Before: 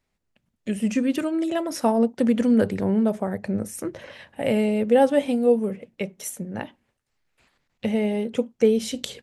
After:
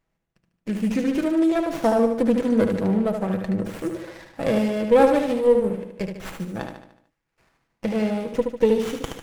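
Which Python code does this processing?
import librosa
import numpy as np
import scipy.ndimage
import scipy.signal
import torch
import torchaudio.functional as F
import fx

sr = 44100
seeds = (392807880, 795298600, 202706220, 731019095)

p1 = x + 0.41 * np.pad(x, (int(6.1 * sr / 1000.0), 0))[:len(x)]
p2 = p1 + fx.echo_feedback(p1, sr, ms=74, feedback_pct=50, wet_db=-6, dry=0)
y = fx.running_max(p2, sr, window=9)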